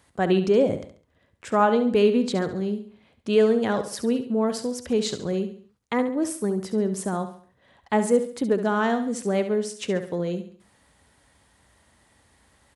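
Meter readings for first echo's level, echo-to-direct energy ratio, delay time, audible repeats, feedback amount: -10.5 dB, -9.5 dB, 69 ms, 4, 40%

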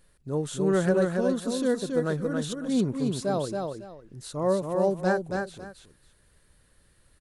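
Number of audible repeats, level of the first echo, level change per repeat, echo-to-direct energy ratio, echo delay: 2, -4.0 dB, -13.0 dB, -4.0 dB, 276 ms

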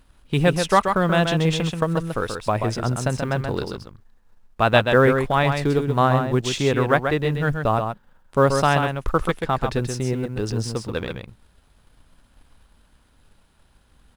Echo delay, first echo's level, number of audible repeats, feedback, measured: 132 ms, -6.0 dB, 1, no regular repeats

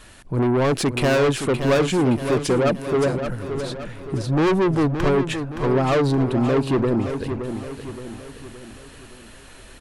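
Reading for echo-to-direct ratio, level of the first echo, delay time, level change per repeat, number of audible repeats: -7.5 dB, -8.5 dB, 570 ms, -6.5 dB, 5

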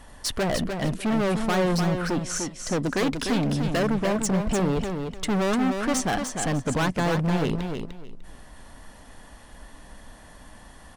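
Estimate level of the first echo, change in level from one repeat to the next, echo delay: -6.0 dB, -13.5 dB, 299 ms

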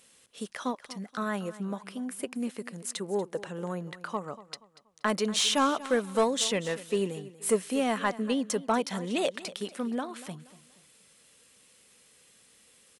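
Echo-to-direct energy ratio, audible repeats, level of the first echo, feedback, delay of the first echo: -16.5 dB, 2, -17.0 dB, 35%, 238 ms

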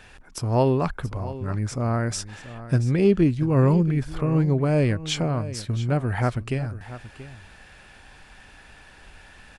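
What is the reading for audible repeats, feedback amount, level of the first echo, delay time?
1, no regular repeats, -15.0 dB, 681 ms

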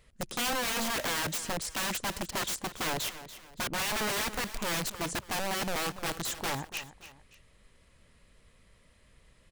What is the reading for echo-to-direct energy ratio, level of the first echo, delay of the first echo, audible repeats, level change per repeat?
-13.5 dB, -14.0 dB, 286 ms, 2, -8.5 dB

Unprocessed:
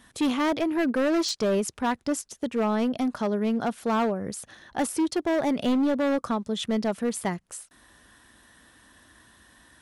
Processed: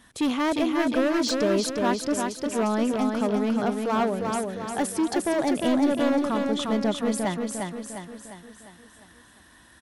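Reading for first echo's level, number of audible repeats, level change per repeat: -4.0 dB, 6, -6.0 dB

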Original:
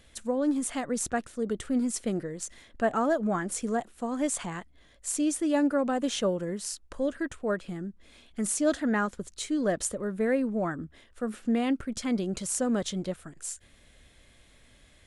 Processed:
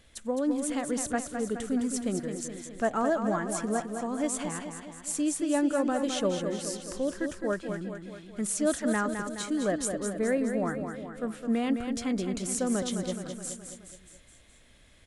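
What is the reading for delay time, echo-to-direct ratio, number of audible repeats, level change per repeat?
211 ms, -5.5 dB, 5, -5.0 dB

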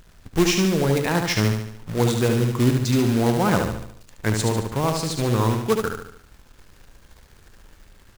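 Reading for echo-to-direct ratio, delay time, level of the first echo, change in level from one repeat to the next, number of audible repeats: -4.0 dB, 73 ms, -5.0 dB, -6.5 dB, 5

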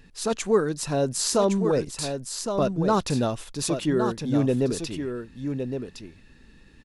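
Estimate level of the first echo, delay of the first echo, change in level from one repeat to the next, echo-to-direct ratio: -7.0 dB, 1113 ms, no regular repeats, -7.0 dB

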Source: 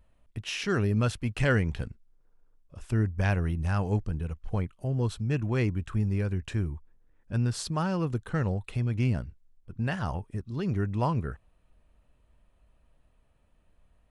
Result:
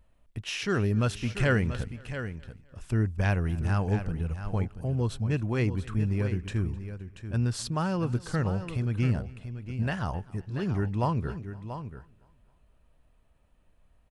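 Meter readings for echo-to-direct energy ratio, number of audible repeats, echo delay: -10.0 dB, 4, 258 ms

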